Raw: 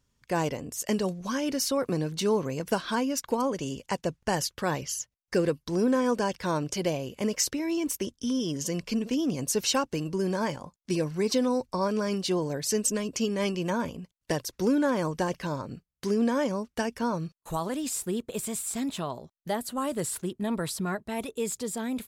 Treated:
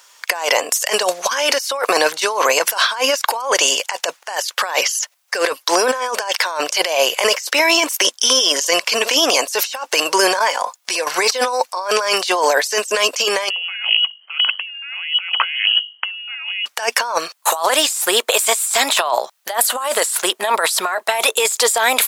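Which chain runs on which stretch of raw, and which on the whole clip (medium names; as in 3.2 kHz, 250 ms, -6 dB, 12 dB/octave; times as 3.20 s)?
10.39–11.07 s: comb 4.1 ms, depth 31% + compression 3:1, threshold -42 dBFS
13.50–16.66 s: hum notches 50/100/150/200/250 Hz + frequency inversion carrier 3.1 kHz
whole clip: high-pass 680 Hz 24 dB/octave; compressor with a negative ratio -43 dBFS, ratio -1; loudness maximiser +24.5 dB; trim -1 dB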